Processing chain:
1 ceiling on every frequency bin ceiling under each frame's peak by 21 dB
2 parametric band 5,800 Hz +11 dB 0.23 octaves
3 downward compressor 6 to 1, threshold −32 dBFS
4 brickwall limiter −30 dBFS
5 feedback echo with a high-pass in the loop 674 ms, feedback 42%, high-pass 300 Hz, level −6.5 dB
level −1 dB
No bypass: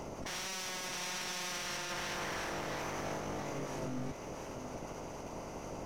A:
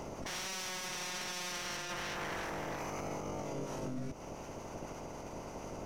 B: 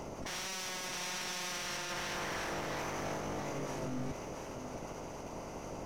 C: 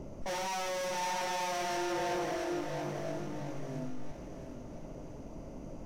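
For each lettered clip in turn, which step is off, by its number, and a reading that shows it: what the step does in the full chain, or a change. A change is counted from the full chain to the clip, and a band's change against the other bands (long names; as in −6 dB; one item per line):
5, change in crest factor −2.5 dB
3, average gain reduction 8.5 dB
1, 8 kHz band −5.0 dB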